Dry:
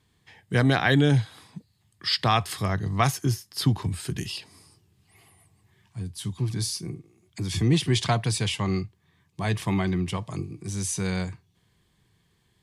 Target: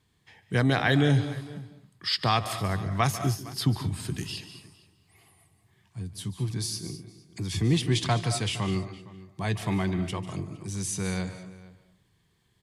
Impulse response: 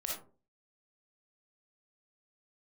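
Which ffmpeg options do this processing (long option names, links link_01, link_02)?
-filter_complex "[0:a]asplit=2[link_01][link_02];[link_02]adelay=460.6,volume=-19dB,highshelf=frequency=4000:gain=-10.4[link_03];[link_01][link_03]amix=inputs=2:normalize=0,asplit=2[link_04][link_05];[1:a]atrim=start_sample=2205,adelay=146[link_06];[link_05][link_06]afir=irnorm=-1:irlink=0,volume=-12dB[link_07];[link_04][link_07]amix=inputs=2:normalize=0,volume=-2.5dB"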